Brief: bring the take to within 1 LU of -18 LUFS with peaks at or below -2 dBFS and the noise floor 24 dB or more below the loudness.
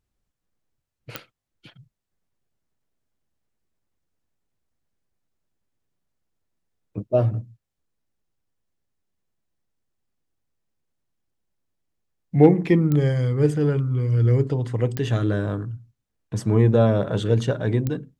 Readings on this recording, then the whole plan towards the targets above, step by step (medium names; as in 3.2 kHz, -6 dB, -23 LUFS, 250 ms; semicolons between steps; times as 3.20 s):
clicks found 4; loudness -21.0 LUFS; peak level -1.5 dBFS; loudness target -18.0 LUFS
-> de-click; trim +3 dB; peak limiter -2 dBFS